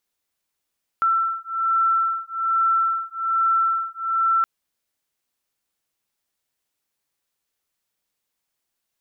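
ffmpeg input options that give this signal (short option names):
-f lavfi -i "aevalsrc='0.0841*(sin(2*PI*1340*t)+sin(2*PI*1341.2*t))':d=3.42:s=44100"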